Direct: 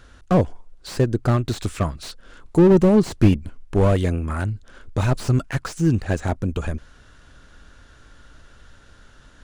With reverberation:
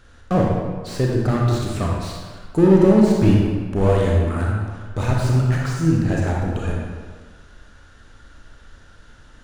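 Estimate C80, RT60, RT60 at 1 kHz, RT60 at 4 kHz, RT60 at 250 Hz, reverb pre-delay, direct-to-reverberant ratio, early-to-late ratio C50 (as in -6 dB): 1.5 dB, 1.5 s, 1.5 s, 1.1 s, 1.4 s, 29 ms, -2.5 dB, -0.5 dB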